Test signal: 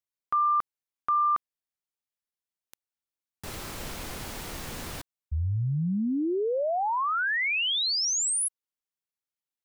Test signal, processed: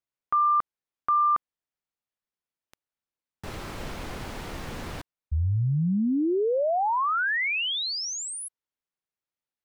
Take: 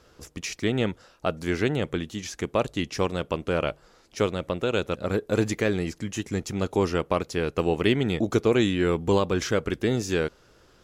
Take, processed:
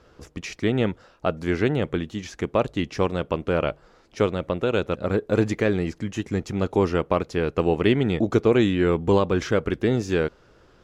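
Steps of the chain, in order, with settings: low-pass 2.4 kHz 6 dB/octave; trim +3 dB

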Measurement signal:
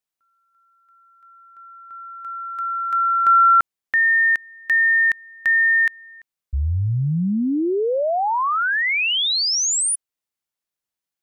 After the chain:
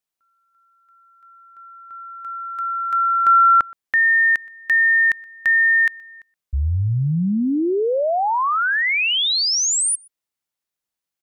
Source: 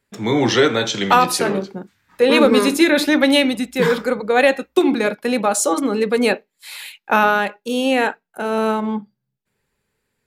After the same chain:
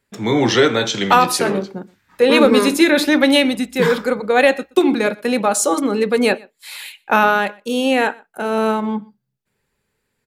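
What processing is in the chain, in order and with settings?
echo from a far wall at 21 m, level -25 dB; trim +1 dB

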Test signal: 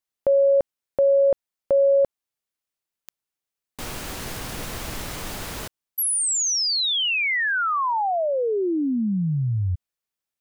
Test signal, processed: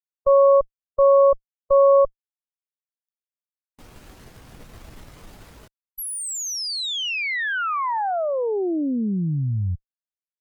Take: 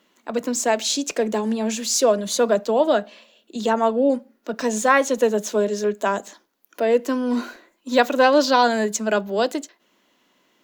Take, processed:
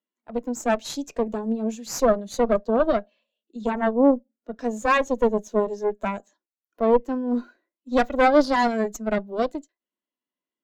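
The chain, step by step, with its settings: Chebyshev shaper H 3 -36 dB, 4 -8 dB, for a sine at -3.5 dBFS; hard clipper -6.5 dBFS; spectral contrast expander 1.5:1

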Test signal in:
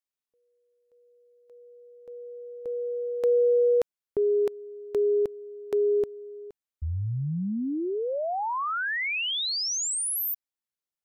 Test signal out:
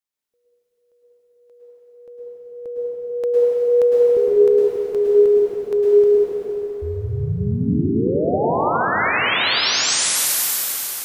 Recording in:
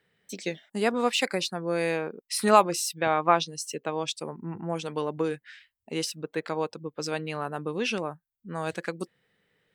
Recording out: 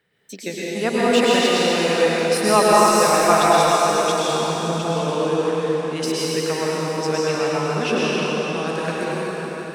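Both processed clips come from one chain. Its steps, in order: in parallel at -8.5 dB: hard clipper -16 dBFS; on the sum: plate-style reverb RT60 4.8 s, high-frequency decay 0.85×, pre-delay 95 ms, DRR -7.5 dB; trim -1 dB

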